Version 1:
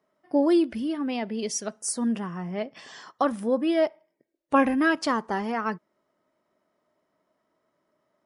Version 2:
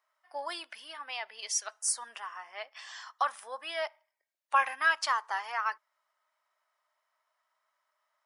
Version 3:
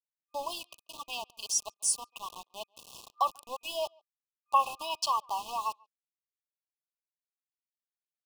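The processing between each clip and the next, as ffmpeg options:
-af "highpass=f=900:w=0.5412,highpass=f=900:w=1.3066"
-filter_complex "[0:a]aeval=exprs='val(0)*gte(abs(val(0)),0.01)':c=same,afftfilt=real='re*(1-between(b*sr/4096,1200,2500))':imag='im*(1-between(b*sr/4096,1200,2500))':win_size=4096:overlap=0.75,asplit=2[s0][s1];[s1]adelay=140,highpass=300,lowpass=3400,asoftclip=type=hard:threshold=0.0668,volume=0.0355[s2];[s0][s2]amix=inputs=2:normalize=0,volume=1.26"

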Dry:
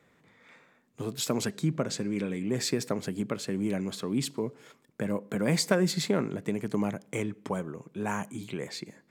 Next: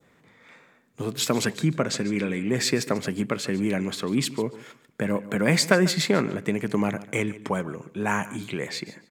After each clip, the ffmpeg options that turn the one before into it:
-af "adynamicequalizer=threshold=0.00398:dfrequency=2000:dqfactor=0.87:tfrequency=2000:tqfactor=0.87:attack=5:release=100:ratio=0.375:range=3:mode=boostabove:tftype=bell,aecho=1:1:144|288:0.133|0.0267,volume=1.68"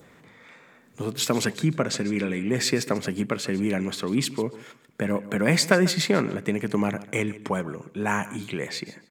-af "acompressor=mode=upward:threshold=0.00562:ratio=2.5"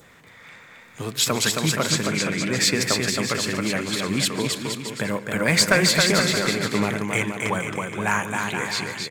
-filter_complex "[0:a]equalizer=f=280:w=0.41:g=-9,asplit=2[s0][s1];[s1]aeval=exprs='0.119*(abs(mod(val(0)/0.119+3,4)-2)-1)':c=same,volume=0.282[s2];[s0][s2]amix=inputs=2:normalize=0,aecho=1:1:270|472.5|624.4|738.3|823.7:0.631|0.398|0.251|0.158|0.1,volume=1.58"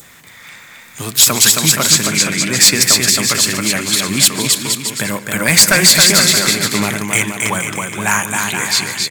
-af "crystalizer=i=3:c=0,asoftclip=type=hard:threshold=0.422,equalizer=f=470:t=o:w=0.45:g=-5.5,volume=1.78"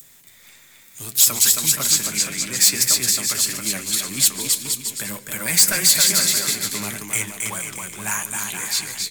-filter_complex "[0:a]crystalizer=i=2:c=0,flanger=delay=6.3:depth=5.5:regen=56:speed=1.7:shape=triangular,acrossover=split=320|740|2400[s0][s1][s2][s3];[s2]acrusher=bits=6:dc=4:mix=0:aa=0.000001[s4];[s0][s1][s4][s3]amix=inputs=4:normalize=0,volume=0.335"

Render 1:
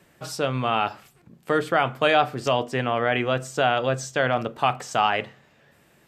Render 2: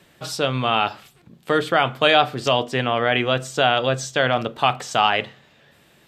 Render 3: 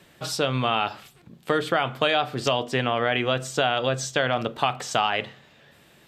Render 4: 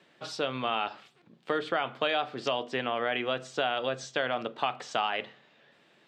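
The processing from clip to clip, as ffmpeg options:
-af "equalizer=f=3600:t=o:w=0.74:g=7.5,volume=1.33"
-af "acompressor=threshold=0.112:ratio=4"
-af "highpass=220,lowpass=4700,volume=0.501"

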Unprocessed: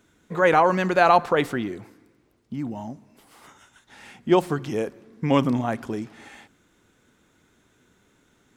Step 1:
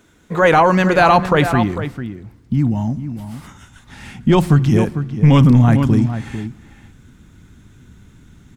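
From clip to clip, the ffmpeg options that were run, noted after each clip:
-filter_complex "[0:a]asplit=2[s0][s1];[s1]adelay=449,volume=0.282,highshelf=f=4000:g=-10.1[s2];[s0][s2]amix=inputs=2:normalize=0,asubboost=boost=9.5:cutoff=160,apsyclip=4.47,volume=0.562"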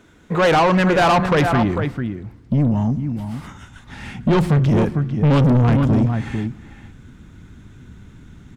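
-af "highshelf=f=5900:g=-10,asoftclip=type=tanh:threshold=0.188,volume=1.41"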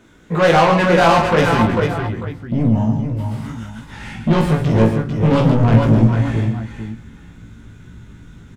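-filter_complex "[0:a]asplit=2[s0][s1];[s1]adelay=18,volume=0.708[s2];[s0][s2]amix=inputs=2:normalize=0,asplit=2[s3][s4];[s4]aecho=0:1:45|138|447:0.447|0.398|0.422[s5];[s3][s5]amix=inputs=2:normalize=0,volume=0.891"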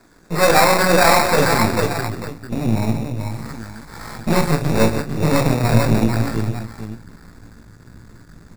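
-filter_complex "[0:a]aeval=exprs='if(lt(val(0),0),0.251*val(0),val(0))':c=same,acrossover=split=460|4300[s0][s1][s2];[s0]flanger=delay=2.7:depth=7.3:regen=-64:speed=0.81:shape=triangular[s3];[s1]acrusher=samples=14:mix=1:aa=0.000001[s4];[s3][s4][s2]amix=inputs=3:normalize=0,volume=1.58"

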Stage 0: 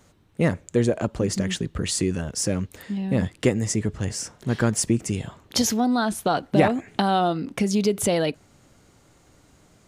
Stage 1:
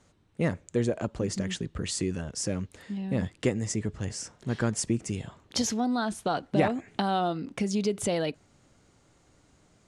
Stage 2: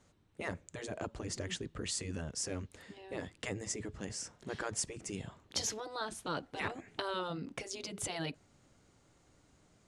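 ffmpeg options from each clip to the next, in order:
-af "lowpass=f=9700:w=0.5412,lowpass=f=9700:w=1.3066,volume=0.501"
-af "afftfilt=real='re*lt(hypot(re,im),0.2)':imag='im*lt(hypot(re,im),0.2)':win_size=1024:overlap=0.75,volume=0.596"

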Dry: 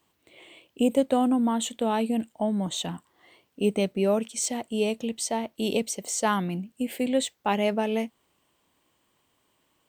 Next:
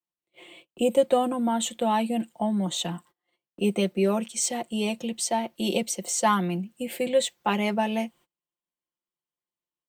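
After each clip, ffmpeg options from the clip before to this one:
-filter_complex "[0:a]agate=range=0.0316:threshold=0.00251:ratio=16:detection=peak,aecho=1:1:5.7:0.74,acrossover=split=170|460|7300[s0][s1][s2][s3];[s0]acompressor=threshold=0.00794:ratio=6[s4];[s4][s1][s2][s3]amix=inputs=4:normalize=0"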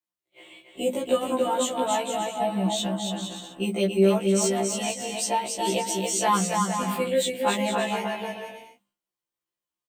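-af "bandreject=f=50:t=h:w=6,bandreject=f=100:t=h:w=6,bandreject=f=150:t=h:w=6,bandreject=f=200:t=h:w=6,bandreject=f=250:t=h:w=6,aecho=1:1:280|462|580.3|657.2|707.2:0.631|0.398|0.251|0.158|0.1,afftfilt=real='re*1.73*eq(mod(b,3),0)':imag='im*1.73*eq(mod(b,3),0)':win_size=2048:overlap=0.75,volume=1.33"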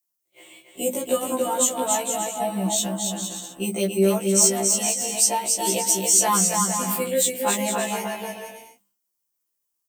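-af "aexciter=amount=4.9:drive=2.2:freq=5100"

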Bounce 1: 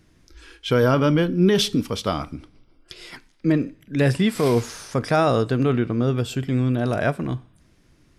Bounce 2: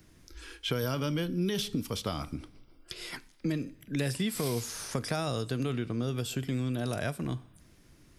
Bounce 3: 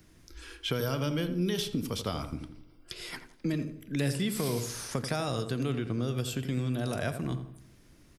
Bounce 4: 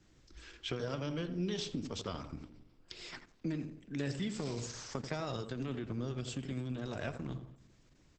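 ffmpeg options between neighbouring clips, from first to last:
-filter_complex "[0:a]acrossover=split=170|3000[s0][s1][s2];[s0]acompressor=threshold=0.0178:ratio=4[s3];[s1]acompressor=threshold=0.0251:ratio=4[s4];[s2]acompressor=threshold=0.0112:ratio=4[s5];[s3][s4][s5]amix=inputs=3:normalize=0,highshelf=f=10000:g=12,volume=0.841"
-filter_complex "[0:a]asplit=2[s0][s1];[s1]adelay=85,lowpass=f=1300:p=1,volume=0.398,asplit=2[s2][s3];[s3]adelay=85,lowpass=f=1300:p=1,volume=0.45,asplit=2[s4][s5];[s5]adelay=85,lowpass=f=1300:p=1,volume=0.45,asplit=2[s6][s7];[s7]adelay=85,lowpass=f=1300:p=1,volume=0.45,asplit=2[s8][s9];[s9]adelay=85,lowpass=f=1300:p=1,volume=0.45[s10];[s0][s2][s4][s6][s8][s10]amix=inputs=6:normalize=0"
-af "volume=0.501" -ar 48000 -c:a libopus -b:a 10k

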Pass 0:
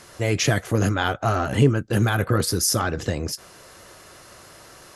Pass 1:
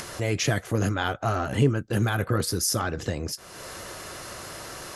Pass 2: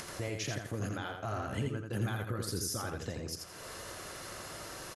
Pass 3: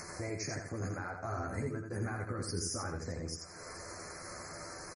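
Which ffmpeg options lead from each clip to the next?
-af "acompressor=mode=upward:threshold=0.0708:ratio=2.5,volume=0.631"
-filter_complex "[0:a]alimiter=limit=0.112:level=0:latency=1:release=330,asplit=2[s0][s1];[s1]aecho=0:1:84|168|252|336:0.562|0.152|0.041|0.0111[s2];[s0][s2]amix=inputs=2:normalize=0,volume=0.447"
-filter_complex "[0:a]asuperstop=centerf=3200:order=8:qfactor=1.6,asplit=2[s0][s1];[s1]adelay=12,volume=0.631[s2];[s0][s2]amix=inputs=2:normalize=0,volume=0.794" -ar 48000 -c:a libmp3lame -b:a 40k

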